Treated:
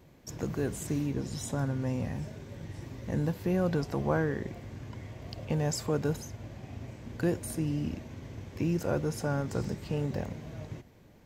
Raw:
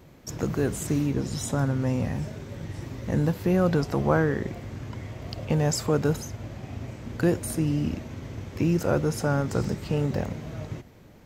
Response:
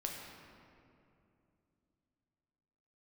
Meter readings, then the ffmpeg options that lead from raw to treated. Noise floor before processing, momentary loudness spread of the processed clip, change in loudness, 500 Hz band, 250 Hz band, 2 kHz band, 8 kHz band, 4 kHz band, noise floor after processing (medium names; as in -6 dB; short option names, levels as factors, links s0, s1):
-50 dBFS, 14 LU, -6.0 dB, -6.0 dB, -6.0 dB, -6.5 dB, -6.0 dB, -6.0 dB, -56 dBFS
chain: -af "bandreject=f=1300:w=12,volume=0.501"